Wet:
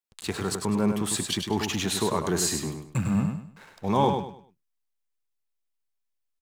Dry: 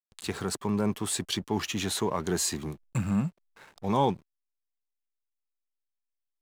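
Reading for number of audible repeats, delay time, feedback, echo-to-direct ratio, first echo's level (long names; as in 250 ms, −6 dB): 3, 101 ms, 30%, −5.5 dB, −6.0 dB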